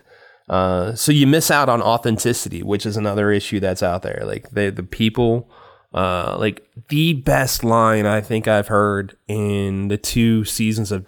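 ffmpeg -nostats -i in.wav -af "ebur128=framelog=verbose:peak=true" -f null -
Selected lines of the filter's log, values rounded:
Integrated loudness:
  I:         -18.6 LUFS
  Threshold: -28.8 LUFS
Loudness range:
  LRA:         3.8 LU
  Threshold: -39.0 LUFS
  LRA low:   -21.2 LUFS
  LRA high:  -17.4 LUFS
True peak:
  Peak:       -3.5 dBFS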